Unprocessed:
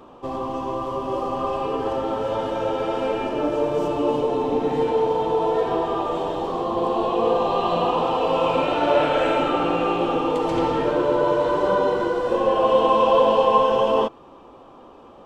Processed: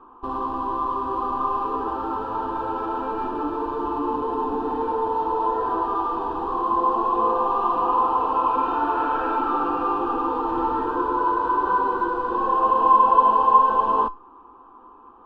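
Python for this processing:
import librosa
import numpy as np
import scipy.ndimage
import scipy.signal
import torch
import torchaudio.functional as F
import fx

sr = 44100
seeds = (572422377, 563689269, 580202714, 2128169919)

p1 = fx.band_shelf(x, sr, hz=1500.0, db=9.5, octaves=1.7)
p2 = fx.schmitt(p1, sr, flips_db=-27.5)
p3 = p1 + (p2 * 10.0 ** (-10.0 / 20.0))
p4 = fx.air_absorb(p3, sr, metres=480.0)
p5 = fx.fixed_phaser(p4, sr, hz=570.0, stages=6)
p6 = fx.comb_fb(p5, sr, f0_hz=510.0, decay_s=0.25, harmonics='all', damping=0.0, mix_pct=70)
y = p6 * 10.0 ** (5.5 / 20.0)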